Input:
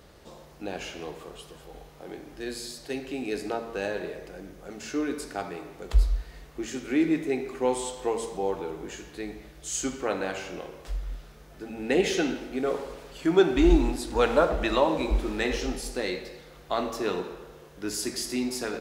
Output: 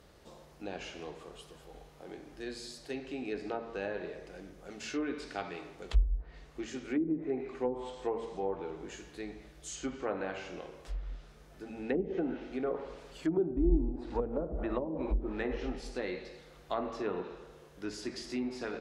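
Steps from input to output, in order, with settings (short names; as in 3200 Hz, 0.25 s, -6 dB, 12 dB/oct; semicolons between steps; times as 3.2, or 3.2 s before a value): treble ducked by the level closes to 320 Hz, closed at -19 dBFS; 4.27–6.64 dynamic EQ 3100 Hz, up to +7 dB, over -55 dBFS, Q 0.83; gain -6 dB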